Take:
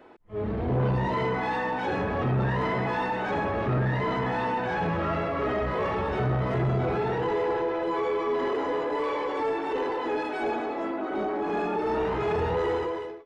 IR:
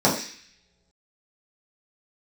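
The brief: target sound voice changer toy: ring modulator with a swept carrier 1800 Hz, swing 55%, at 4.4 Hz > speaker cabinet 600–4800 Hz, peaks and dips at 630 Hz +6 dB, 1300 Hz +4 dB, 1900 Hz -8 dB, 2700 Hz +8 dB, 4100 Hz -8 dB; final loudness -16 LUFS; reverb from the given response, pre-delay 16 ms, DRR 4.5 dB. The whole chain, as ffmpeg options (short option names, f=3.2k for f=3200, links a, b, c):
-filter_complex "[0:a]asplit=2[a][b];[1:a]atrim=start_sample=2205,adelay=16[c];[b][c]afir=irnorm=-1:irlink=0,volume=-23.5dB[d];[a][d]amix=inputs=2:normalize=0,aeval=exprs='val(0)*sin(2*PI*1800*n/s+1800*0.55/4.4*sin(2*PI*4.4*n/s))':c=same,highpass=600,equalizer=f=630:t=q:w=4:g=6,equalizer=f=1.3k:t=q:w=4:g=4,equalizer=f=1.9k:t=q:w=4:g=-8,equalizer=f=2.7k:t=q:w=4:g=8,equalizer=f=4.1k:t=q:w=4:g=-8,lowpass=f=4.8k:w=0.5412,lowpass=f=4.8k:w=1.3066,volume=8dB"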